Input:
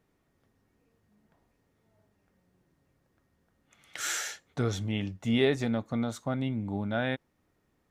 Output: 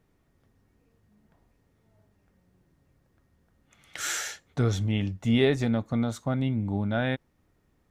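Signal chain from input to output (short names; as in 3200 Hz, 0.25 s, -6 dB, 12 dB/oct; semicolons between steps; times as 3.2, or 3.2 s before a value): low shelf 120 Hz +9 dB; gain +1.5 dB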